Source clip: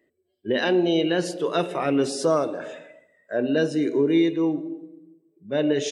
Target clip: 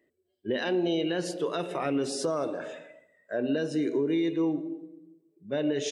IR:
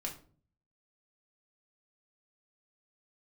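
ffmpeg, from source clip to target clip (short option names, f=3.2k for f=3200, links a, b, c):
-af "alimiter=limit=-16.5dB:level=0:latency=1:release=112,volume=-3dB"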